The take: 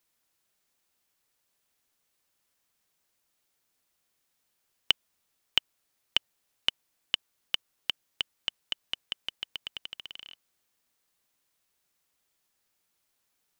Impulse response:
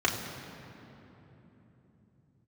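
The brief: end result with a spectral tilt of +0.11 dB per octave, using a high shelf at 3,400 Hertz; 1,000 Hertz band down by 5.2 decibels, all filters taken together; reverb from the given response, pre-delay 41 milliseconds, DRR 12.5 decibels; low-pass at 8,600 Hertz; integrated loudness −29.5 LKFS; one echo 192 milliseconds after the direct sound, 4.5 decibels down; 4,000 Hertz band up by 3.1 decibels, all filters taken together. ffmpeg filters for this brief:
-filter_complex "[0:a]lowpass=8600,equalizer=frequency=1000:width_type=o:gain=-7,highshelf=frequency=3400:gain=-4.5,equalizer=frequency=4000:width_type=o:gain=9,aecho=1:1:192:0.596,asplit=2[link_01][link_02];[1:a]atrim=start_sample=2205,adelay=41[link_03];[link_02][link_03]afir=irnorm=-1:irlink=0,volume=-25dB[link_04];[link_01][link_04]amix=inputs=2:normalize=0,volume=-0.5dB"

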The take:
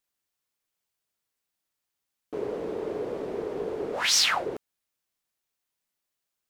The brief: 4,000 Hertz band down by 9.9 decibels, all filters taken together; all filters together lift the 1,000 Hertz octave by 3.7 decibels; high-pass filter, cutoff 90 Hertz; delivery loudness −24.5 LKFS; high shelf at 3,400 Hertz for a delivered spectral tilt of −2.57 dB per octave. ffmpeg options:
ffmpeg -i in.wav -af "highpass=90,equalizer=frequency=1000:width_type=o:gain=6,highshelf=frequency=3400:gain=-7,equalizer=frequency=4000:width_type=o:gain=-8,volume=6dB" out.wav

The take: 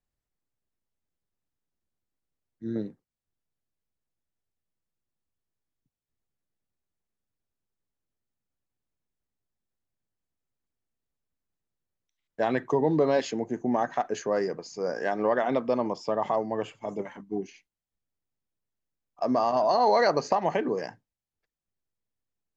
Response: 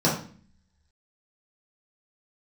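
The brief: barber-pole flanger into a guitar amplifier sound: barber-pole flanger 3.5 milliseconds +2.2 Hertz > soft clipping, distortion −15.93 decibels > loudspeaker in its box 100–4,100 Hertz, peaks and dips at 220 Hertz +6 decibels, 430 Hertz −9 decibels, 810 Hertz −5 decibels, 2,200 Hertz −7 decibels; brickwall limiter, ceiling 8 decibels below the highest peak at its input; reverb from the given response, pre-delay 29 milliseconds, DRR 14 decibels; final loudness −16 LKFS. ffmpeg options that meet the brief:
-filter_complex "[0:a]alimiter=limit=-17.5dB:level=0:latency=1,asplit=2[link_01][link_02];[1:a]atrim=start_sample=2205,adelay=29[link_03];[link_02][link_03]afir=irnorm=-1:irlink=0,volume=-29.5dB[link_04];[link_01][link_04]amix=inputs=2:normalize=0,asplit=2[link_05][link_06];[link_06]adelay=3.5,afreqshift=2.2[link_07];[link_05][link_07]amix=inputs=2:normalize=1,asoftclip=threshold=-24.5dB,highpass=100,equalizer=frequency=220:width_type=q:width=4:gain=6,equalizer=frequency=430:width_type=q:width=4:gain=-9,equalizer=frequency=810:width_type=q:width=4:gain=-5,equalizer=frequency=2200:width_type=q:width=4:gain=-7,lowpass=frequency=4100:width=0.5412,lowpass=frequency=4100:width=1.3066,volume=19.5dB"

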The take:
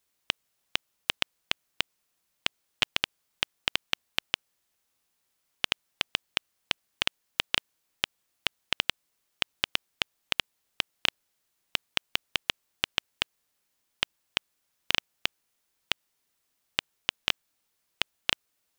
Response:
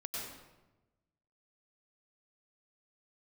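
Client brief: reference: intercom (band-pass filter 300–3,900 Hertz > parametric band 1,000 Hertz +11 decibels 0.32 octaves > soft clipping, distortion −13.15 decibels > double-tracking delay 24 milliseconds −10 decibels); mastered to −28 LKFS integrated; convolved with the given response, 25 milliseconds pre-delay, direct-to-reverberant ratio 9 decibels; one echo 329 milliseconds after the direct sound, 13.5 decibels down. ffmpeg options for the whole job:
-filter_complex "[0:a]aecho=1:1:329:0.211,asplit=2[link_01][link_02];[1:a]atrim=start_sample=2205,adelay=25[link_03];[link_02][link_03]afir=irnorm=-1:irlink=0,volume=-9.5dB[link_04];[link_01][link_04]amix=inputs=2:normalize=0,highpass=300,lowpass=3900,equalizer=frequency=1000:width_type=o:width=0.32:gain=11,asoftclip=threshold=-9.5dB,asplit=2[link_05][link_06];[link_06]adelay=24,volume=-10dB[link_07];[link_05][link_07]amix=inputs=2:normalize=0,volume=6.5dB"

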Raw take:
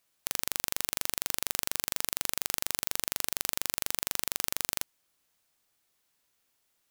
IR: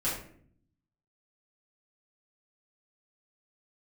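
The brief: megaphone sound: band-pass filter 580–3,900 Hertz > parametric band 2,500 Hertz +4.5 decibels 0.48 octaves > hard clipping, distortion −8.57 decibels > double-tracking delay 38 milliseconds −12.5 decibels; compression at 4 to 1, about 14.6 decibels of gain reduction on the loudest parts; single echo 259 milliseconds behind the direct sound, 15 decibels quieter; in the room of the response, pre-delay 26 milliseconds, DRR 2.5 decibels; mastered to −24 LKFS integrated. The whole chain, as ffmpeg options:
-filter_complex "[0:a]acompressor=threshold=-41dB:ratio=4,aecho=1:1:259:0.178,asplit=2[link_01][link_02];[1:a]atrim=start_sample=2205,adelay=26[link_03];[link_02][link_03]afir=irnorm=-1:irlink=0,volume=-9.5dB[link_04];[link_01][link_04]amix=inputs=2:normalize=0,highpass=580,lowpass=3900,equalizer=frequency=2500:width_type=o:width=0.48:gain=4.5,asoftclip=type=hard:threshold=-38dB,asplit=2[link_05][link_06];[link_06]adelay=38,volume=-12.5dB[link_07];[link_05][link_07]amix=inputs=2:normalize=0,volume=29.5dB"

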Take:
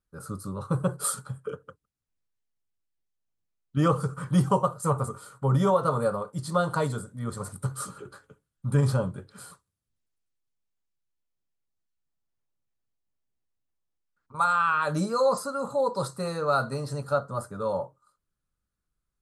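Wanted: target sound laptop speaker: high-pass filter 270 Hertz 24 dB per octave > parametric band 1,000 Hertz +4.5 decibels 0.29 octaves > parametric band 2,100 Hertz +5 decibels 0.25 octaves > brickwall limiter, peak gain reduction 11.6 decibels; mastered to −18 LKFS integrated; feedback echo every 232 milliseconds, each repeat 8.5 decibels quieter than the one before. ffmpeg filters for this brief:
ffmpeg -i in.wav -af "highpass=frequency=270:width=0.5412,highpass=frequency=270:width=1.3066,equalizer=frequency=1000:width_type=o:width=0.29:gain=4.5,equalizer=frequency=2100:width_type=o:width=0.25:gain=5,aecho=1:1:232|464|696|928:0.376|0.143|0.0543|0.0206,volume=14.5dB,alimiter=limit=-7dB:level=0:latency=1" out.wav

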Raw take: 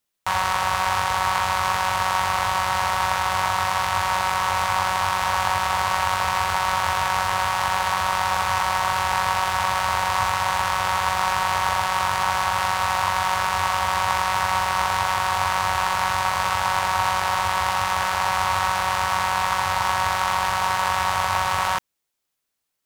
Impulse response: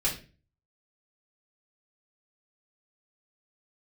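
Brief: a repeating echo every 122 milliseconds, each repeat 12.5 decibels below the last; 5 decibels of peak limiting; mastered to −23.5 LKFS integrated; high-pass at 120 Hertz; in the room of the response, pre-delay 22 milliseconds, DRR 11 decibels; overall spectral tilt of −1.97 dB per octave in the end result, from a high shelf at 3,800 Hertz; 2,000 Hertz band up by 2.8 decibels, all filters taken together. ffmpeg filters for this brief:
-filter_complex "[0:a]highpass=120,equalizer=frequency=2000:width_type=o:gain=5,highshelf=frequency=3800:gain=-5.5,alimiter=limit=-10.5dB:level=0:latency=1,aecho=1:1:122|244|366:0.237|0.0569|0.0137,asplit=2[link_01][link_02];[1:a]atrim=start_sample=2205,adelay=22[link_03];[link_02][link_03]afir=irnorm=-1:irlink=0,volume=-18.5dB[link_04];[link_01][link_04]amix=inputs=2:normalize=0,volume=-1dB"

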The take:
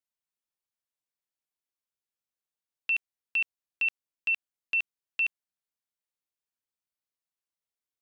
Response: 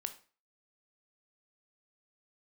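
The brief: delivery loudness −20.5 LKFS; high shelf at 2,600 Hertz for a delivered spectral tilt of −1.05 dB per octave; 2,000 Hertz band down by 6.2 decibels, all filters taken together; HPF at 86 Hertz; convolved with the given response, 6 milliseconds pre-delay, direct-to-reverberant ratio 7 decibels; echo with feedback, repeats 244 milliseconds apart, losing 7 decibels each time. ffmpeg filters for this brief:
-filter_complex "[0:a]highpass=86,equalizer=frequency=2000:width_type=o:gain=-5,highshelf=frequency=2600:gain=-6.5,aecho=1:1:244|488|732|976|1220:0.447|0.201|0.0905|0.0407|0.0183,asplit=2[link_01][link_02];[1:a]atrim=start_sample=2205,adelay=6[link_03];[link_02][link_03]afir=irnorm=-1:irlink=0,volume=-5.5dB[link_04];[link_01][link_04]amix=inputs=2:normalize=0,volume=12.5dB"

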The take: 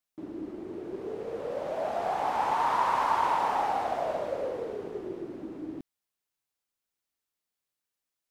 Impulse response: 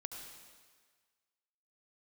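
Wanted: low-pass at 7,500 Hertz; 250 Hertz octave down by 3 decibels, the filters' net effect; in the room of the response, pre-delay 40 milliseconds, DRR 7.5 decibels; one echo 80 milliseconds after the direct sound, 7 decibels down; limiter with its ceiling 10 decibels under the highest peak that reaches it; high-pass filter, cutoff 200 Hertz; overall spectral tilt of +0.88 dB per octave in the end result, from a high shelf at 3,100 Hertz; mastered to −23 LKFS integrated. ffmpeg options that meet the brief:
-filter_complex "[0:a]highpass=200,lowpass=7500,equalizer=frequency=250:width_type=o:gain=-3,highshelf=frequency=3100:gain=-8,alimiter=level_in=0.5dB:limit=-24dB:level=0:latency=1,volume=-0.5dB,aecho=1:1:80:0.447,asplit=2[link_01][link_02];[1:a]atrim=start_sample=2205,adelay=40[link_03];[link_02][link_03]afir=irnorm=-1:irlink=0,volume=-5dB[link_04];[link_01][link_04]amix=inputs=2:normalize=0,volume=10dB"

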